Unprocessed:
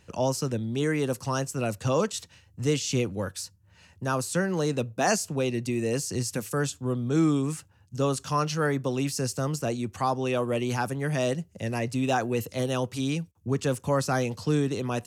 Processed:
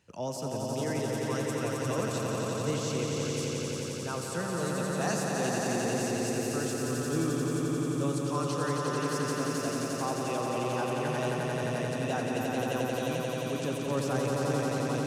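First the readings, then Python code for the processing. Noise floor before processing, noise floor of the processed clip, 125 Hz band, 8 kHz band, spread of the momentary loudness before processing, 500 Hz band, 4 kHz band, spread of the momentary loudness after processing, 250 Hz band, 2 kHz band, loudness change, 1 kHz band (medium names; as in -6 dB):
-59 dBFS, -35 dBFS, -4.0 dB, -2.5 dB, 6 LU, -2.5 dB, -2.5 dB, 3 LU, -3.0 dB, -2.5 dB, -3.0 dB, -2.5 dB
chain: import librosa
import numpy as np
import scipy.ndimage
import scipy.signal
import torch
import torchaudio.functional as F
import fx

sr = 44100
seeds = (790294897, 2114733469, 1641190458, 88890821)

p1 = scipy.signal.sosfilt(scipy.signal.butter(2, 93.0, 'highpass', fs=sr, output='sos'), x)
p2 = p1 + fx.echo_swell(p1, sr, ms=88, loudest=5, wet_db=-4, dry=0)
y = p2 * librosa.db_to_amplitude(-9.0)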